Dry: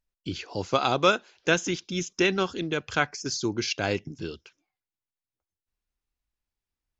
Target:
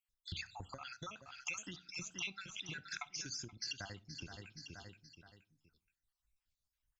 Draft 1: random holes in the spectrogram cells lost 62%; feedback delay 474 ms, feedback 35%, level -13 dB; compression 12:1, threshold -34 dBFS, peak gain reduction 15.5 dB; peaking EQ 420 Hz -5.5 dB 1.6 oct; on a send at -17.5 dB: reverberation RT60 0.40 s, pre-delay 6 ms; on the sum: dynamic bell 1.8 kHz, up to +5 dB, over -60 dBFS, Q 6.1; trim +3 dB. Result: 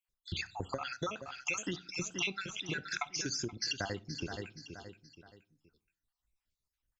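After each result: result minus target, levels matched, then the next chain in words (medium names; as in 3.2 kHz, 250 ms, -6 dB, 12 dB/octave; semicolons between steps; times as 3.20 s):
500 Hz band +7.5 dB; compression: peak gain reduction -6.5 dB
random holes in the spectrogram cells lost 62%; feedback delay 474 ms, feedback 35%, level -13 dB; compression 12:1, threshold -34 dBFS, peak gain reduction 15.5 dB; peaking EQ 420 Hz -16.5 dB 1.6 oct; on a send at -17.5 dB: reverberation RT60 0.40 s, pre-delay 6 ms; on the sum: dynamic bell 1.8 kHz, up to +5 dB, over -60 dBFS, Q 6.1; trim +3 dB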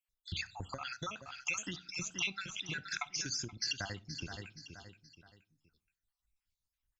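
compression: peak gain reduction -6.5 dB
random holes in the spectrogram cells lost 62%; feedback delay 474 ms, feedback 35%, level -13 dB; compression 12:1, threshold -41 dBFS, peak gain reduction 22 dB; peaking EQ 420 Hz -16.5 dB 1.6 oct; on a send at -17.5 dB: reverberation RT60 0.40 s, pre-delay 6 ms; on the sum: dynamic bell 1.8 kHz, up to +5 dB, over -60 dBFS, Q 6.1; trim +3 dB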